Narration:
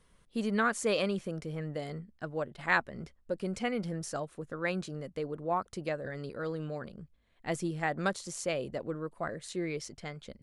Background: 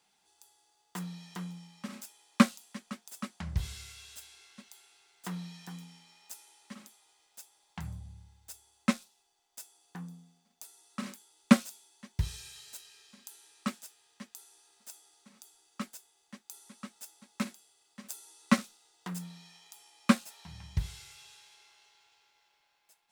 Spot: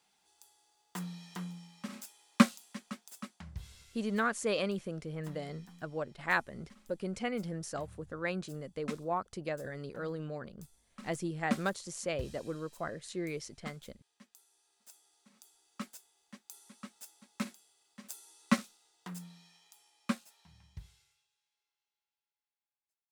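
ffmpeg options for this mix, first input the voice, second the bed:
-filter_complex "[0:a]adelay=3600,volume=0.75[s0];[1:a]volume=2.51,afade=t=out:st=2.87:d=0.68:silence=0.281838,afade=t=in:st=14.46:d=1.43:silence=0.354813,afade=t=out:st=18.5:d=2.78:silence=0.0473151[s1];[s0][s1]amix=inputs=2:normalize=0"

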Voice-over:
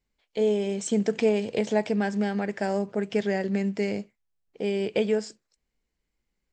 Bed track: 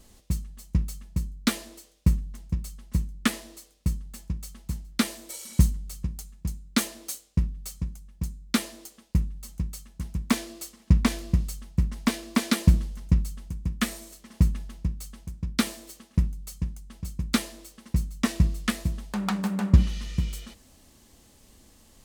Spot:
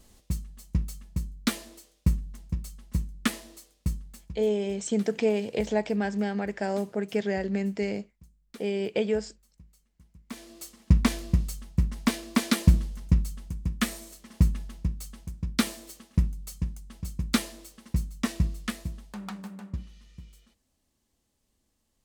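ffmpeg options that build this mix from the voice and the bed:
-filter_complex "[0:a]adelay=4000,volume=0.794[s0];[1:a]volume=10.6,afade=t=out:st=3.96:d=0.57:silence=0.0891251,afade=t=in:st=10.27:d=0.53:silence=0.0707946,afade=t=out:st=17.49:d=2.32:silence=0.112202[s1];[s0][s1]amix=inputs=2:normalize=0"

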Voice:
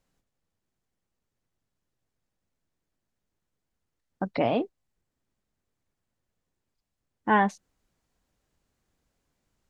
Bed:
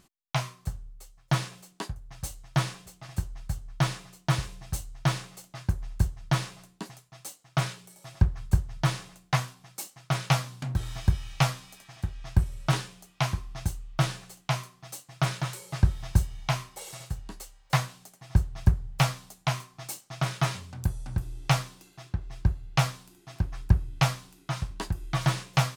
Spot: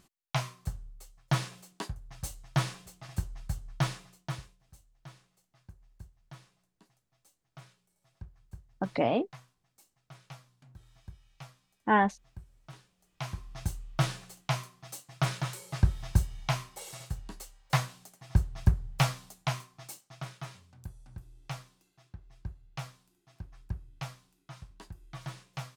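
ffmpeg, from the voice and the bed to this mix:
-filter_complex "[0:a]adelay=4600,volume=0.794[s0];[1:a]volume=9.44,afade=t=out:st=3.7:d=0.87:silence=0.0794328,afade=t=in:st=12.97:d=0.79:silence=0.0794328,afade=t=out:st=19.28:d=1.11:silence=0.211349[s1];[s0][s1]amix=inputs=2:normalize=0"

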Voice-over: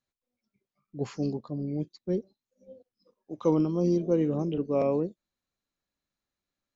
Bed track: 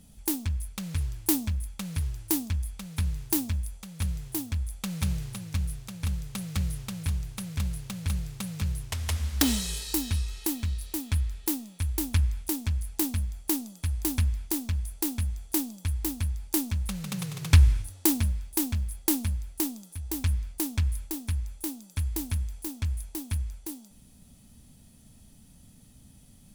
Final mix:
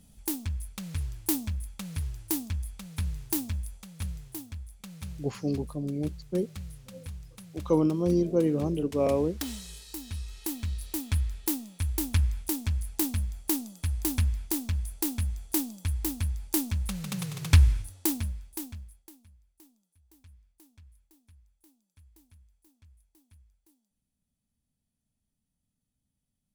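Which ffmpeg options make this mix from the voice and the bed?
-filter_complex "[0:a]adelay=4250,volume=1.06[s0];[1:a]volume=2.51,afade=t=out:st=3.74:d=0.94:silence=0.375837,afade=t=in:st=9.99:d=0.97:silence=0.281838,afade=t=out:st=17.46:d=1.65:silence=0.0398107[s1];[s0][s1]amix=inputs=2:normalize=0"

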